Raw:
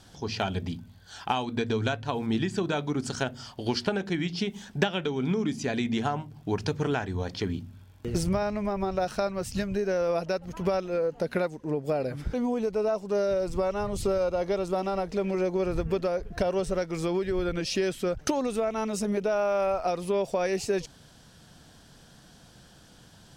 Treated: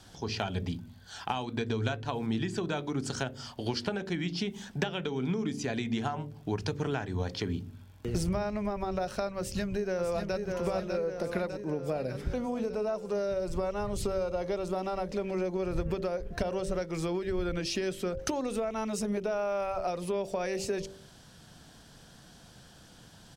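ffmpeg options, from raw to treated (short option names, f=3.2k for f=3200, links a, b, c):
-filter_complex "[0:a]asplit=2[a][b];[b]afade=t=in:st=9.38:d=0.01,afade=t=out:st=10.37:d=0.01,aecho=0:1:600|1200|1800|2400|3000|3600|4200|4800:0.562341|0.337405|0.202443|0.121466|0.0728794|0.0437277|0.0262366|0.015742[c];[a][c]amix=inputs=2:normalize=0,bandreject=f=48.42:t=h:w=4,bandreject=f=96.84:t=h:w=4,bandreject=f=145.26:t=h:w=4,bandreject=f=193.68:t=h:w=4,bandreject=f=242.1:t=h:w=4,bandreject=f=290.52:t=h:w=4,bandreject=f=338.94:t=h:w=4,bandreject=f=387.36:t=h:w=4,bandreject=f=435.78:t=h:w=4,bandreject=f=484.2:t=h:w=4,bandreject=f=532.62:t=h:w=4,bandreject=f=581.04:t=h:w=4,acrossover=split=130[d][e];[e]acompressor=threshold=-32dB:ratio=2[f];[d][f]amix=inputs=2:normalize=0"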